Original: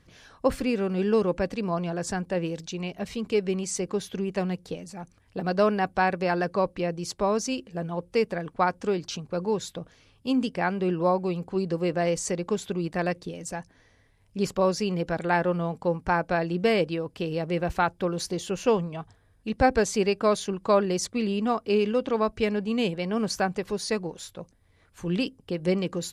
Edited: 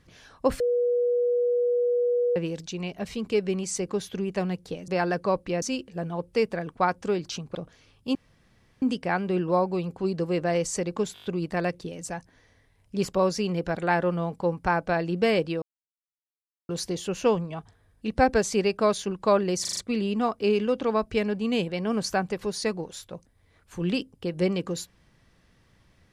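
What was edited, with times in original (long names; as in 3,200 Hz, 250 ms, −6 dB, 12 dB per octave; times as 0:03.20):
0:00.60–0:02.36: beep over 485 Hz −20.5 dBFS
0:04.88–0:06.18: remove
0:06.92–0:07.41: remove
0:09.34–0:09.74: remove
0:10.34: splice in room tone 0.67 s
0:12.66: stutter 0.02 s, 6 plays
0:17.04–0:18.11: silence
0:21.03: stutter 0.04 s, 5 plays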